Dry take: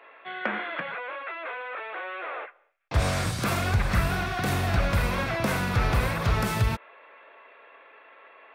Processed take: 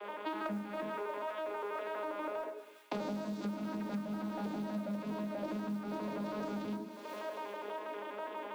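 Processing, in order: vocoder on a broken chord bare fifth, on G#3, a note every 81 ms; wow and flutter 29 cents; hum notches 60/120/180/240/300/360/420 Hz; on a send at -6 dB: reverberation RT60 0.50 s, pre-delay 3 ms; on the sum: modulation noise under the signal 29 dB; ten-band graphic EQ 500 Hz +6 dB, 2 kHz -4 dB, 4 kHz +4 dB; in parallel at -5.5 dB: hard clipper -28.5 dBFS, distortion -4 dB; on the sum: feedback echo behind a high-pass 188 ms, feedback 65%, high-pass 3.8 kHz, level -13.5 dB; compression 20:1, threshold -41 dBFS, peak gain reduction 29 dB; trim +5.5 dB

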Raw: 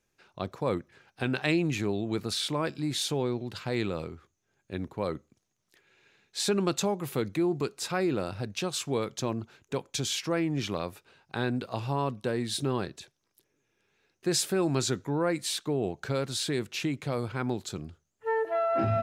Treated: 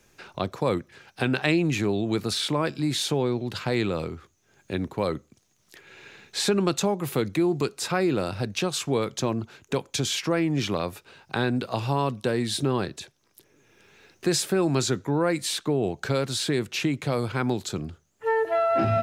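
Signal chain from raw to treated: three bands compressed up and down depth 40%; trim +4.5 dB

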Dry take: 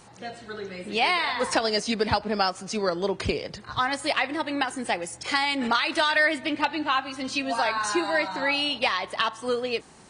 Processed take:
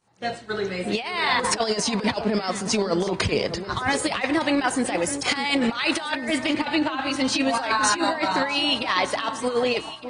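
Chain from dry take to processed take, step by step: expander -36 dBFS; compressor with a negative ratio -28 dBFS, ratio -0.5; on a send: echo whose repeats swap between lows and highs 605 ms, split 1.1 kHz, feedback 54%, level -10 dB; on the sum: trim +5.5 dB

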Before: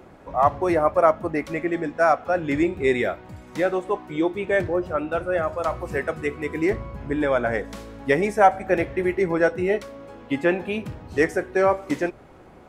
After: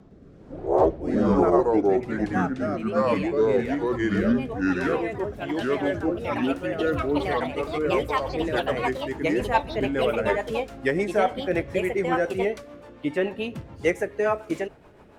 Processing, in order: gliding tape speed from 52% -> 115%; ever faster or slower copies 110 ms, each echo +3 st, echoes 3; rotary cabinet horn 1.2 Hz, later 7 Hz, at 7.31 s; trim -1.5 dB

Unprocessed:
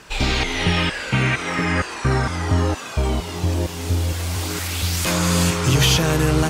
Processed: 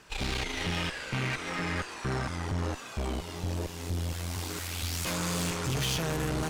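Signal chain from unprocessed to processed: valve stage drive 21 dB, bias 0.8; trim -6 dB

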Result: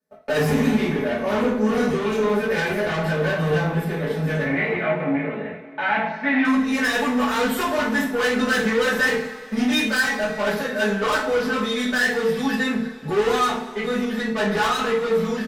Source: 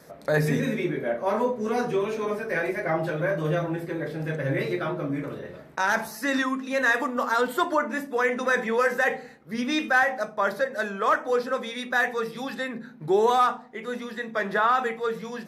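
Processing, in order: gate -39 dBFS, range -39 dB; comb 4.6 ms, depth 79%; valve stage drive 26 dB, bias 0.3; 4.43–6.45 s: cabinet simulation 130–2700 Hz, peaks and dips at 210 Hz -4 dB, 410 Hz -6 dB, 710 Hz +6 dB, 1.2 kHz -5 dB, 2.2 kHz +8 dB; two-slope reverb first 0.36 s, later 2.8 s, from -20 dB, DRR -7.5 dB

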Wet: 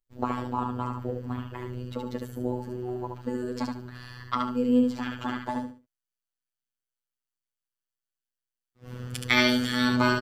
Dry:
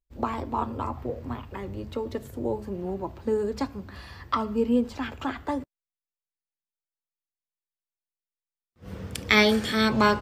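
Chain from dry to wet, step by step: robot voice 124 Hz; feedback delay 72 ms, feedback 25%, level -4 dB

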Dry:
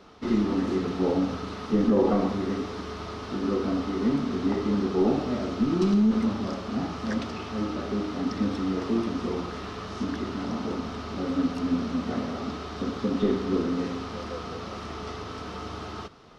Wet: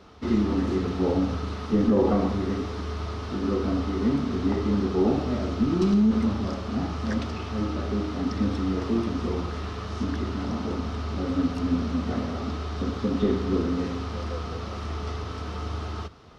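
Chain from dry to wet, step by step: peaking EQ 77 Hz +11.5 dB 0.92 oct

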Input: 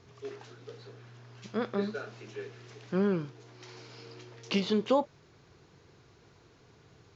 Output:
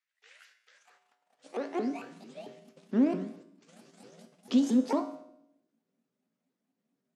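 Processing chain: sawtooth pitch modulation +11 st, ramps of 224 ms; peaking EQ 250 Hz +8.5 dB 0.46 oct; gate -49 dBFS, range -22 dB; feedback comb 56 Hz, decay 0.71 s, harmonics odd, mix 70%; in parallel at -9 dB: overload inside the chain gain 32.5 dB; on the sum: high-pass sweep 1.9 kHz -> 220 Hz, 0.67–2.06 s; on a send at -14.5 dB: reverberation RT60 0.80 s, pre-delay 13 ms

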